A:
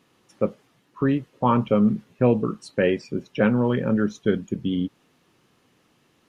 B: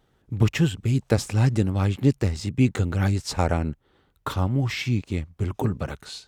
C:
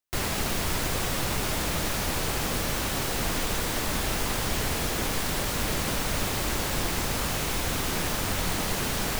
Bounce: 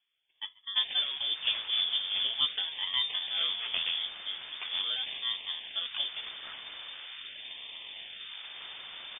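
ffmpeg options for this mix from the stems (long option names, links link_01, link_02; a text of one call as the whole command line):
ffmpeg -i stem1.wav -i stem2.wav -i stem3.wav -filter_complex "[0:a]equalizer=frequency=2800:width_type=o:width=0.7:gain=-13.5,volume=-17.5dB,asplit=2[link_01][link_02];[link_02]volume=-23.5dB[link_03];[1:a]aeval=exprs='val(0)*sin(2*PI*250*n/s)':channel_layout=same,flanger=delay=1.3:depth=9.8:regen=-50:speed=0.69:shape=sinusoidal,adelay=350,volume=-3.5dB[link_04];[2:a]equalizer=frequency=520:width=1.4:gain=5.5,adelay=650,volume=-17dB[link_05];[link_03]aecho=0:1:138:1[link_06];[link_01][link_04][link_05][link_06]amix=inputs=4:normalize=0,acrusher=samples=14:mix=1:aa=0.000001:lfo=1:lforange=14:lforate=0.42,lowpass=frequency=3100:width_type=q:width=0.5098,lowpass=frequency=3100:width_type=q:width=0.6013,lowpass=frequency=3100:width_type=q:width=0.9,lowpass=frequency=3100:width_type=q:width=2.563,afreqshift=-3600" out.wav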